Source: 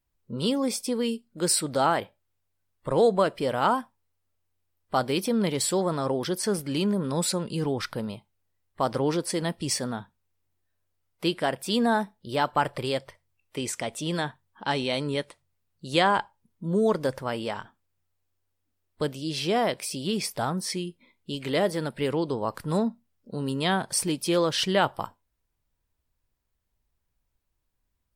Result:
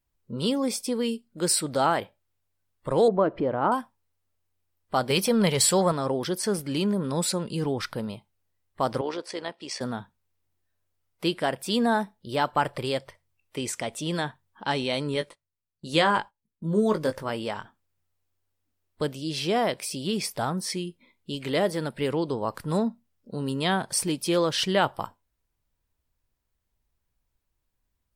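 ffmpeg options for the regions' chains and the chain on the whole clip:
-filter_complex "[0:a]asettb=1/sr,asplit=3[s0][s1][s2];[s0]atrim=end=3.084[s3];[s1]atrim=start=3.08:end=3.72,asetpts=PTS-STARTPTS,afade=t=in:d=0.004:c=qsin,afade=t=out:st=0.636:d=0.004:c=qsin,lowpass=1300,equalizer=f=320:w=4.3:g=6.5,acompressor=mode=upward:threshold=0.0562:ratio=2.5:attack=3.2:release=140:knee=2.83:detection=peak[s4];[s2]atrim=start=3.716[s5];[s3][s4]acrossfade=d=0.004:c1=hsin:c2=qsin[s6];[s6][s5]acrossfade=d=0.004:c1=qsin:c2=hsin,asettb=1/sr,asplit=3[s7][s8][s9];[s7]atrim=end=5.104[s10];[s8]atrim=start=5.1:end=5.92,asetpts=PTS-STARTPTS,afade=t=in:d=0.004:c=qsin,afade=t=out:st=0.816:d=0.004:c=qsin,bandreject=f=3600:w=19,acontrast=60,equalizer=f=300:t=o:w=0.55:g=-13[s11];[s9]atrim=start=5.916[s12];[s10][s11]acrossfade=d=0.004:c1=hsin:c2=qsin[s13];[s13][s12]acrossfade=d=0.004:c1=qsin:c2=hsin,asettb=1/sr,asplit=3[s14][s15][s16];[s14]atrim=end=9.014[s17];[s15]atrim=start=9.01:end=9.81,asetpts=PTS-STARTPTS,afade=t=in:d=0.004:c=qsin,afade=t=out:st=0.796:d=0.004:c=qsin,highpass=420,lowpass=4900,tremolo=f=64:d=0.462[s18];[s16]atrim=start=9.806[s19];[s17][s18]acrossfade=d=0.004:c1=hsin:c2=qsin[s20];[s20][s19]acrossfade=d=0.004:c1=qsin:c2=hsin,asettb=1/sr,asplit=3[s21][s22][s23];[s21]atrim=end=15.144[s24];[s22]atrim=start=15.14:end=17.3,asetpts=PTS-STARTPTS,afade=t=in:d=0.004:c=qsin,afade=t=out:st=2.156:d=0.004:c=qsin,agate=range=0.178:threshold=0.00282:ratio=16:release=100:detection=peak,equalizer=f=740:w=4.9:g=-4,asplit=2[s25][s26];[s26]adelay=19,volume=0.422[s27];[s25][s27]amix=inputs=2:normalize=0,atrim=end_sample=95256[s28];[s23]atrim=start=17.296[s29];[s24][s28]acrossfade=d=0.004:c1=hsin:c2=qsin[s30];[s30][s29]acrossfade=d=0.004:c1=qsin:c2=hsin"

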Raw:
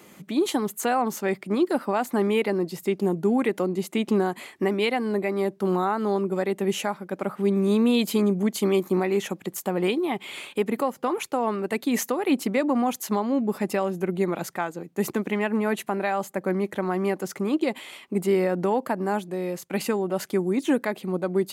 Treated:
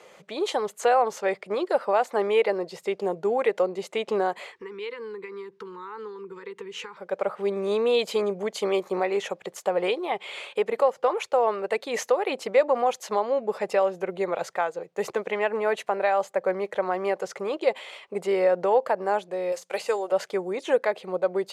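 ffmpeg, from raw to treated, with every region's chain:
-filter_complex "[0:a]asettb=1/sr,asplit=3[s0][s1][s2];[s0]atrim=end=4.524[s3];[s1]atrim=start=4.52:end=6.97,asetpts=PTS-STARTPTS,afade=t=in:d=0.004:c=qsin,afade=t=out:st=2.446:d=0.004:c=qsin,equalizer=f=11000:w=0.79:g=-7.5,acompressor=threshold=0.0316:ratio=12:attack=3.2:release=140:knee=1:detection=peak,asuperstop=centerf=660:order=12:qfactor=1.8[s4];[s2]atrim=start=6.966[s5];[s3][s4]acrossfade=d=0.004:c1=hsin:c2=qsin[s6];[s6][s5]acrossfade=d=0.004:c1=qsin:c2=hsin,asettb=1/sr,asplit=3[s7][s8][s9];[s7]atrim=end=19.524[s10];[s8]atrim=start=19.52:end=20.12,asetpts=PTS-STARTPTS,afade=t=in:d=0.004:c=qsin,afade=t=out:st=0.596:d=0.004:c=qsin,deesser=0.9,bass=f=250:g=-14,treble=f=4000:g=12,bandreject=f=60:t=h:w=6,bandreject=f=120:t=h:w=6,bandreject=f=180:t=h:w=6,bandreject=f=240:t=h:w=6[s11];[s9]atrim=start=20.116[s12];[s10][s11]acrossfade=d=0.004:c1=hsin:c2=qsin[s13];[s13][s12]acrossfade=d=0.004:c1=qsin:c2=hsin,lowpass=6100,lowshelf=f=370:t=q:w=3:g=-10"

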